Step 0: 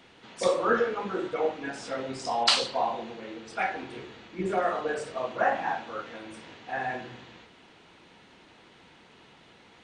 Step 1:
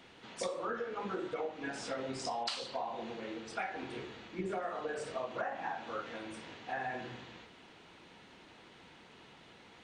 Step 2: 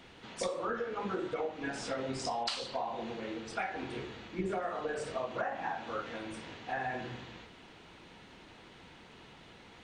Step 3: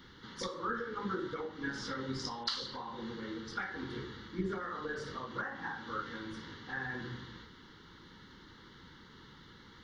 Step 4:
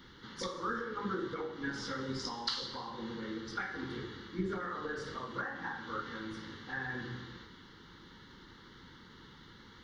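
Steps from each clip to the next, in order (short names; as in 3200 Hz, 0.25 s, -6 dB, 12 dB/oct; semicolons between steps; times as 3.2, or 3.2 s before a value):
compressor 12:1, threshold -32 dBFS, peak gain reduction 15.5 dB; gain -2 dB
low shelf 88 Hz +10 dB; gain +2 dB
fixed phaser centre 2500 Hz, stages 6; gain +2 dB
non-linear reverb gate 0.42 s falling, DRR 9.5 dB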